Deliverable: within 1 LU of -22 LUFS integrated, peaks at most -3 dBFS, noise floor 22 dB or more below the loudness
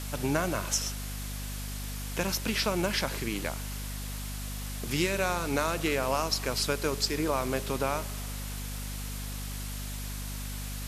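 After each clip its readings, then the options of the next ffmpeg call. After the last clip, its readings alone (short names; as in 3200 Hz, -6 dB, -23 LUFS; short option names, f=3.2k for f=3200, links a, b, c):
hum 50 Hz; harmonics up to 250 Hz; hum level -35 dBFS; noise floor -37 dBFS; noise floor target -54 dBFS; loudness -31.5 LUFS; peak -12.0 dBFS; loudness target -22.0 LUFS
-> -af "bandreject=f=50:t=h:w=6,bandreject=f=100:t=h:w=6,bandreject=f=150:t=h:w=6,bandreject=f=200:t=h:w=6,bandreject=f=250:t=h:w=6"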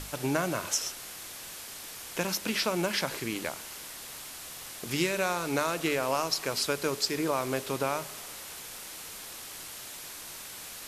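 hum none; noise floor -43 dBFS; noise floor target -54 dBFS
-> -af "afftdn=nr=11:nf=-43"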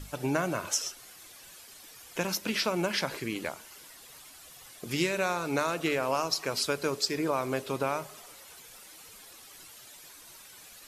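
noise floor -51 dBFS; noise floor target -53 dBFS
-> -af "afftdn=nr=6:nf=-51"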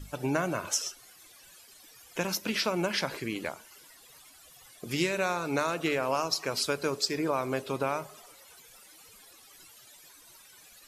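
noise floor -55 dBFS; loudness -30.5 LUFS; peak -13.0 dBFS; loudness target -22.0 LUFS
-> -af "volume=8.5dB"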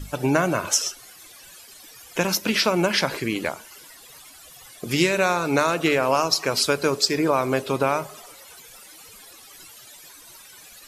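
loudness -22.0 LUFS; peak -4.5 dBFS; noise floor -47 dBFS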